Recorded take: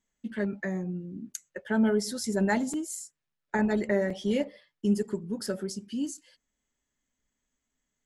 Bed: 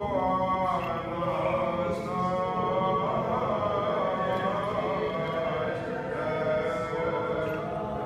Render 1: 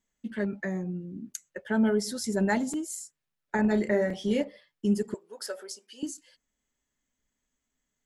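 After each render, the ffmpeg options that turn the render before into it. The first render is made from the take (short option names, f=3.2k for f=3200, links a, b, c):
-filter_complex "[0:a]asettb=1/sr,asplit=3[a][b][c];[a]atrim=end=3.614[d];[b]atrim=start=3.61:end=4.41,asetpts=PTS-STARTPTS,afade=t=in:d=0.004:c=qsin,afade=t=out:st=0.796:d=0.004:c=qsin,asplit=2[e][f];[f]adelay=33,volume=-8.5dB[g];[e][g]amix=inputs=2:normalize=0,atrim=end_sample=35280[h];[c]atrim=start=4.406[i];[d][h]acrossfade=d=0.004:c1=hsin:c2=qsin[j];[j][i]acrossfade=d=0.004:c1=qsin:c2=hsin,asettb=1/sr,asplit=3[k][l][m];[k]atrim=end=5.144[n];[l]atrim=start=5.14:end=6.03,asetpts=PTS-STARTPTS,afade=t=in:d=0.004:c=qsin,afade=t=out:st=0.886:d=0.004:c=qsin,highpass=f=500:w=0.5412,highpass=f=500:w=1.3066[o];[m]atrim=start=6.026[p];[n][o]acrossfade=d=0.004:c1=hsin:c2=qsin[q];[q][p]acrossfade=d=0.004:c1=qsin:c2=hsin"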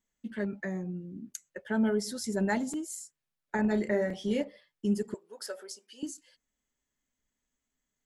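-af "volume=-3dB"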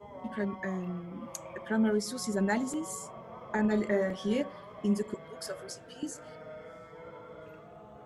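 -filter_complex "[1:a]volume=-18.5dB[a];[0:a][a]amix=inputs=2:normalize=0"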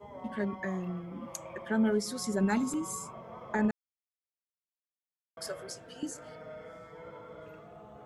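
-filter_complex "[0:a]asettb=1/sr,asplit=3[a][b][c];[a]atrim=end=2.434[d];[b]atrim=start=2.43:end=3.14,asetpts=PTS-STARTPTS,afade=t=in:d=0.004:c=qsin,afade=t=out:st=0.706:d=0.004:c=qsin,aecho=1:1:0.8:0.57,atrim=end_sample=31311[e];[c]atrim=start=3.136[f];[d][e]acrossfade=d=0.004:c1=hsin:c2=qsin[g];[g][f]acrossfade=d=0.004:c1=qsin:c2=hsin,asplit=3[h][i][j];[h]atrim=end=3.71,asetpts=PTS-STARTPTS,afade=t=out:st=3.706:d=0.004:c=hsin[k];[i]atrim=start=3.71:end=5.37,asetpts=PTS-STARTPTS,volume=0[l];[j]atrim=start=5.37,asetpts=PTS-STARTPTS,afade=t=in:d=0.004:c=hsin[m];[k][l][m]concat=n=3:v=0:a=1"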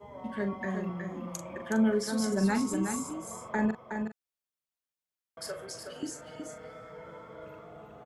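-filter_complex "[0:a]asplit=2[a][b];[b]adelay=41,volume=-9dB[c];[a][c]amix=inputs=2:normalize=0,aecho=1:1:368:0.501"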